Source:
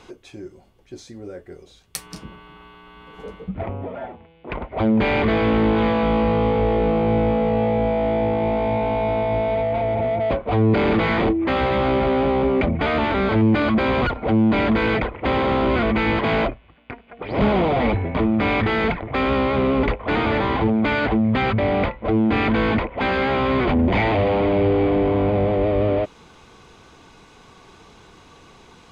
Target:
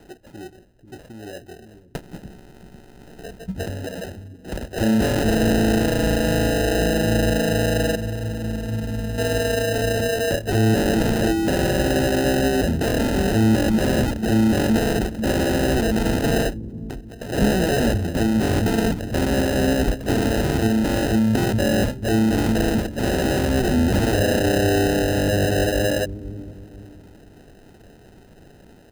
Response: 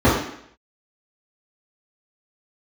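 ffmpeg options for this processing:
-filter_complex "[0:a]asettb=1/sr,asplit=3[link_01][link_02][link_03];[link_01]atrim=end=7.954[link_04];[link_02]atrim=start=7.95:end=9.18,asetpts=PTS-STARTPTS,afade=type=in:duration=0.004:curve=qsin,afade=type=out:start_time=1.226:duration=0.004:curve=qsin,acrossover=split=230|3000[link_05][link_06][link_07];[link_06]acompressor=threshold=-38dB:ratio=3[link_08];[link_05][link_08][link_07]amix=inputs=3:normalize=0[link_09];[link_03]atrim=start=9.176[link_10];[link_04][link_09]acrossfade=duration=0.004:curve1=hsin:curve2=qsin[link_11];[link_11][link_10]acrossfade=duration=0.004:curve1=qsin:curve2=hsin,acrossover=split=320[link_12][link_13];[link_12]aecho=1:1:492|984|1476|1968:0.447|0.165|0.0612|0.0226[link_14];[link_13]acrusher=samples=39:mix=1:aa=0.000001[link_15];[link_14][link_15]amix=inputs=2:normalize=0"

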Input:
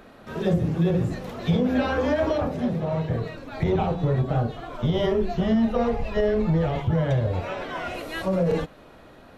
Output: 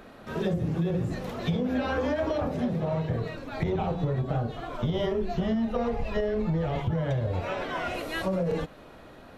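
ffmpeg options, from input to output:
ffmpeg -i in.wav -af "acompressor=threshold=-24dB:ratio=6" out.wav

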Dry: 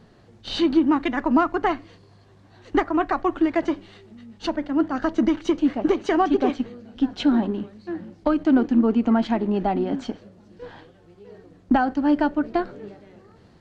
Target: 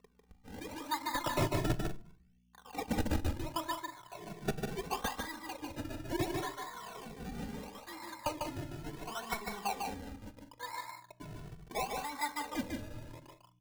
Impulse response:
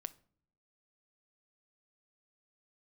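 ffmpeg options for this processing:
-filter_complex "[0:a]acompressor=threshold=-30dB:ratio=4,acrusher=bits=6:mix=0:aa=0.000001,aeval=exprs='val(0)+0.00631*(sin(2*PI*60*n/s)+sin(2*PI*2*60*n/s)/2+sin(2*PI*3*60*n/s)/3+sin(2*PI*4*60*n/s)/4+sin(2*PI*5*60*n/s)/5)':channel_layout=same,bandpass=frequency=1000:width_type=q:width=9.5:csg=0,acrusher=samples=28:mix=1:aa=0.000001:lfo=1:lforange=28:lforate=0.72,aeval=exprs='(mod(63.1*val(0)+1,2)-1)/63.1':channel_layout=same,aecho=1:1:148.7|192.4:0.631|0.251,asplit=2[link_01][link_02];[1:a]atrim=start_sample=2205,lowshelf=frequency=210:gain=4[link_03];[link_02][link_03]afir=irnorm=-1:irlink=0,volume=15.5dB[link_04];[link_01][link_04]amix=inputs=2:normalize=0,asplit=2[link_05][link_06];[link_06]adelay=2.2,afreqshift=0.42[link_07];[link_05][link_07]amix=inputs=2:normalize=1,volume=-1dB"

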